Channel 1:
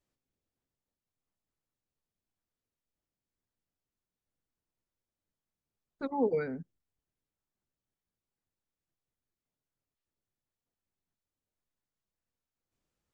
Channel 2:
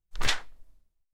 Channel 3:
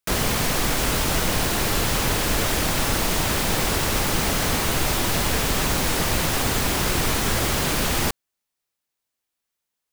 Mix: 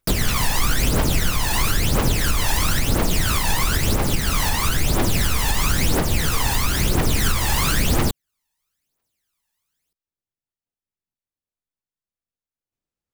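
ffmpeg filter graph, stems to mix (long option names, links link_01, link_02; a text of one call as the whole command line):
ffmpeg -i stem1.wav -i stem2.wav -i stem3.wav -filter_complex "[0:a]volume=-6dB[link_01];[1:a]volume=-0.5dB[link_02];[2:a]aphaser=in_gain=1:out_gain=1:delay=1.2:decay=0.72:speed=1:type=triangular,volume=2dB[link_03];[link_01][link_02][link_03]amix=inputs=3:normalize=0,alimiter=limit=-8.5dB:level=0:latency=1:release=399" out.wav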